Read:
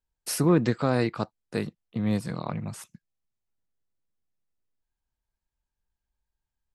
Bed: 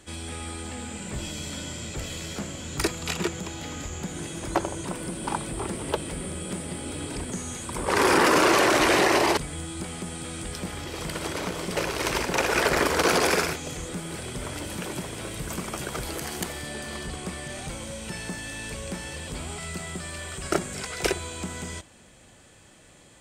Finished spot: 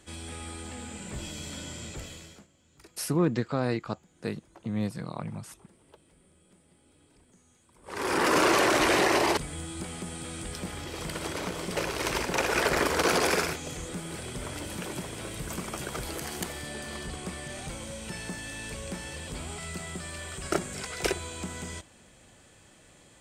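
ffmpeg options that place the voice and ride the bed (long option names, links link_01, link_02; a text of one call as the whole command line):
ffmpeg -i stem1.wav -i stem2.wav -filter_complex "[0:a]adelay=2700,volume=-4dB[link_01];[1:a]volume=21dB,afade=type=out:start_time=1.86:duration=0.61:silence=0.0630957,afade=type=in:start_time=7.82:duration=0.56:silence=0.0530884[link_02];[link_01][link_02]amix=inputs=2:normalize=0" out.wav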